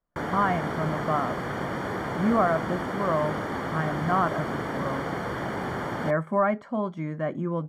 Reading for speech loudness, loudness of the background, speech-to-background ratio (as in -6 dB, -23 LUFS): -28.0 LUFS, -31.0 LUFS, 3.0 dB